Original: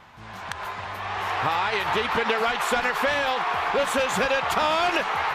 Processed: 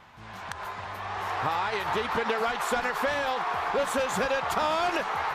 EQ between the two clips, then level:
dynamic equaliser 2,700 Hz, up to −5 dB, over −40 dBFS, Q 1.2
−3.0 dB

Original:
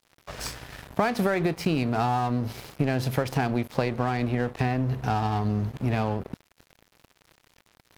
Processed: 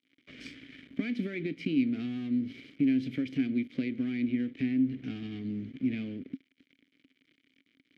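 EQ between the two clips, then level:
high-shelf EQ 7,800 Hz −8.5 dB
dynamic equaliser 980 Hz, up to −8 dB, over −41 dBFS, Q 0.99
formant filter i
+6.5 dB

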